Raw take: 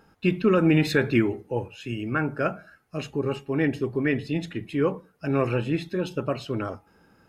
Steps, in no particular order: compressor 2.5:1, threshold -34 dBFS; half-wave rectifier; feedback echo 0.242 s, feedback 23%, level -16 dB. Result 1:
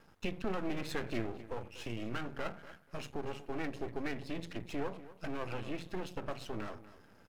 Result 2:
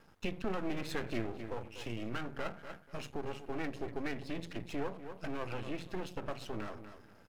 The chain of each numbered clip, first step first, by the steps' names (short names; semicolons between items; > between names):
compressor > feedback echo > half-wave rectifier; feedback echo > compressor > half-wave rectifier